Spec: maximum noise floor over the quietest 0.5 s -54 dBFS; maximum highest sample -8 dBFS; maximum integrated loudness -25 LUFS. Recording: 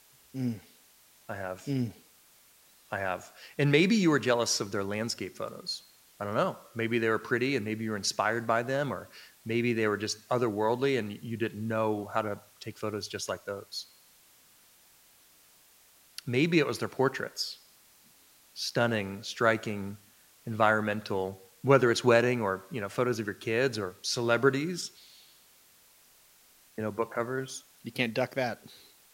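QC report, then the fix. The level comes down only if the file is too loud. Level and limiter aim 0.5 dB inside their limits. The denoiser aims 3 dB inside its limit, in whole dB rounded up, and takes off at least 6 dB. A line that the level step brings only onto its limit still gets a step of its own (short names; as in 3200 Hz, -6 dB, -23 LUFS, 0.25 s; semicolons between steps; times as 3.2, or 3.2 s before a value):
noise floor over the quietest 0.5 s -61 dBFS: OK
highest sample -7.5 dBFS: fail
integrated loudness -30.0 LUFS: OK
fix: limiter -8.5 dBFS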